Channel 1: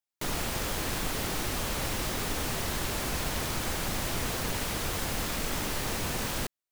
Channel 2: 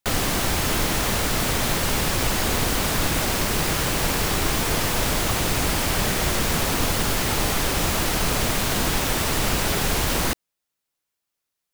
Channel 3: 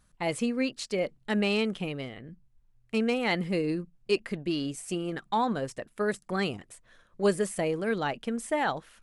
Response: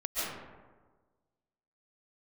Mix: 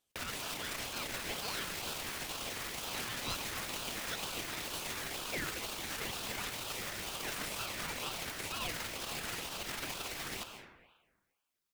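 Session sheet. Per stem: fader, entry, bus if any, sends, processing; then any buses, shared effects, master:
-2.0 dB, 1.20 s, bus A, no send, dry
-2.5 dB, 0.10 s, bus A, send -18.5 dB, formant sharpening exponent 1.5
-7.5 dB, 0.00 s, no bus, no send, dry
bus A: 0.0 dB, limiter -25 dBFS, peak gain reduction 12 dB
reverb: on, RT60 1.4 s, pre-delay 0.1 s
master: HPF 840 Hz 12 dB/oct; ring modulator with a swept carrier 1300 Hz, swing 55%, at 2.1 Hz

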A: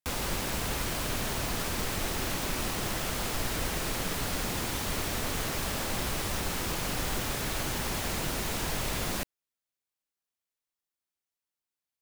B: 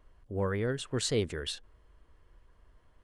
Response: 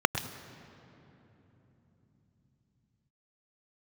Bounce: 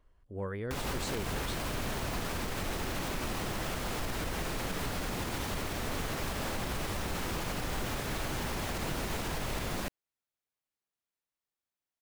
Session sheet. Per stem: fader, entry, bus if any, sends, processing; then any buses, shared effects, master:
0.0 dB, 0.65 s, no send, high shelf 3500 Hz -7 dB
-6.0 dB, 0.00 s, no send, dry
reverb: off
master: limiter -25 dBFS, peak gain reduction 6 dB

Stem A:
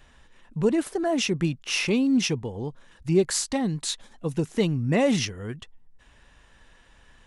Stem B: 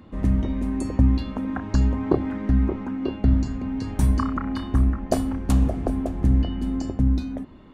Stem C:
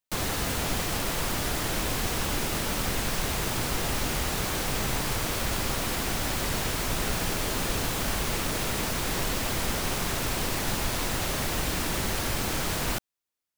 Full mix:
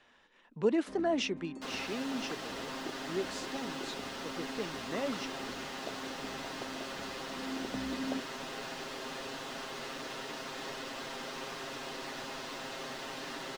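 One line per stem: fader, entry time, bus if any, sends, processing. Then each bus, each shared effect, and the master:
1.13 s -4.5 dB -> 1.64 s -13.5 dB, 0.00 s, no send, dry
-2.0 dB, 0.75 s, no send, compressor, threshold -23 dBFS, peak gain reduction 10.5 dB; auto duck -12 dB, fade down 1.30 s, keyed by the first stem
-11.0 dB, 1.50 s, no send, notch 2300 Hz, Q 14; comb 7.5 ms, depth 76%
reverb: off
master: three-band isolator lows -23 dB, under 210 Hz, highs -19 dB, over 6000 Hz

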